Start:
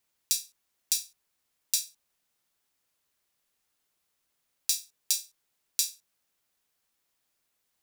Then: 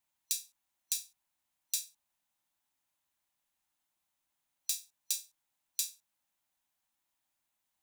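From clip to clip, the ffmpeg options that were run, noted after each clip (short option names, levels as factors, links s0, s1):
-af "superequalizer=7b=0.316:9b=1.78:14b=0.708,volume=0.501"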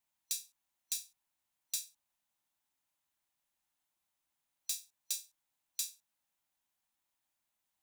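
-af "asoftclip=type=tanh:threshold=0.106,volume=0.794"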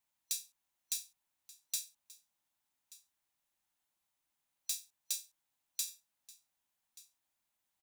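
-af "aecho=1:1:1181:0.1"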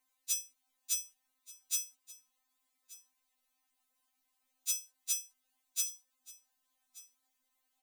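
-af "afftfilt=real='re*3.46*eq(mod(b,12),0)':imag='im*3.46*eq(mod(b,12),0)':win_size=2048:overlap=0.75,volume=2.11"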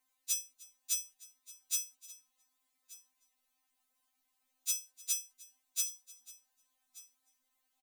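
-af "aecho=1:1:305:0.0794"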